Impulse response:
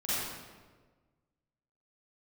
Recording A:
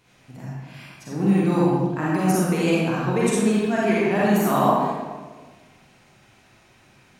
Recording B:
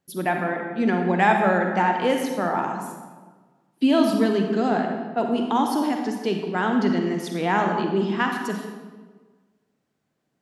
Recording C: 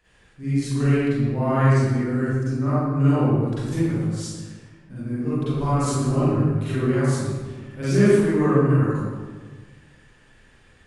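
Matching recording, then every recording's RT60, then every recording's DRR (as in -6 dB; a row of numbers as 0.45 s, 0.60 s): C; 1.4 s, 1.4 s, 1.4 s; -7.0 dB, 3.0 dB, -13.0 dB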